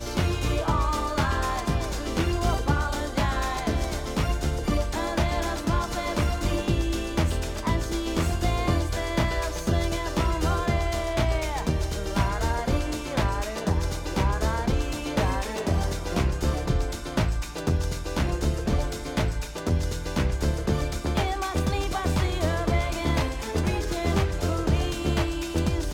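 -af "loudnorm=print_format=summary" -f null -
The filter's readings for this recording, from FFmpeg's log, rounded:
Input Integrated:    -26.9 LUFS
Input True Peak:      -9.5 dBTP
Input LRA:             1.3 LU
Input Threshold:     -36.9 LUFS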